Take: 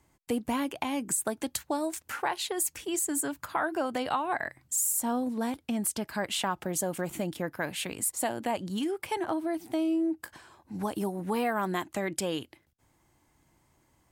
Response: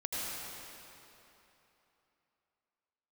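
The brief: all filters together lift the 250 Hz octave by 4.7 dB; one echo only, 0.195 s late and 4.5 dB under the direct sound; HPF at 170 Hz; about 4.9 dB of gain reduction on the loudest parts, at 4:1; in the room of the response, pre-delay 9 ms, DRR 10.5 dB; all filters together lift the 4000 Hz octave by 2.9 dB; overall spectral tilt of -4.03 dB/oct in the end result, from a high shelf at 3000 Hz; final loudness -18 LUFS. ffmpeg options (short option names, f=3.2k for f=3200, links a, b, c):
-filter_complex "[0:a]highpass=170,equalizer=f=250:t=o:g=7,highshelf=f=3k:g=-3,equalizer=f=4k:t=o:g=6,acompressor=threshold=-27dB:ratio=4,aecho=1:1:195:0.596,asplit=2[a][b];[1:a]atrim=start_sample=2205,adelay=9[c];[b][c]afir=irnorm=-1:irlink=0,volume=-15.5dB[d];[a][d]amix=inputs=2:normalize=0,volume=12.5dB"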